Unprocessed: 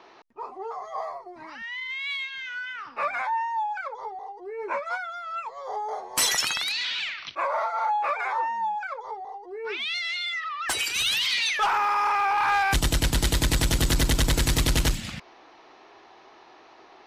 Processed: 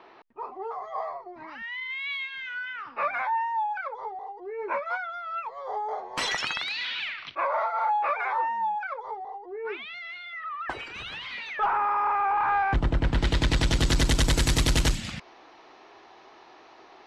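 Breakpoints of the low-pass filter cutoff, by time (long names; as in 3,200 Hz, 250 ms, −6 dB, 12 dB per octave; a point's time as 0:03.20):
0:09.22 3,200 Hz
0:09.98 1,400 Hz
0:12.99 1,400 Hz
0:13.30 3,500 Hz
0:14.22 9,300 Hz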